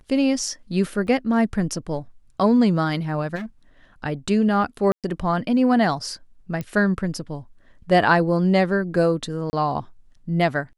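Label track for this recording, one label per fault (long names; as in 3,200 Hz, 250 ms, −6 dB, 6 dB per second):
1.070000	1.070000	drop-out 2.5 ms
3.350000	3.460000	clipping −28 dBFS
4.920000	5.040000	drop-out 117 ms
6.610000	6.610000	click −17 dBFS
9.500000	9.530000	drop-out 30 ms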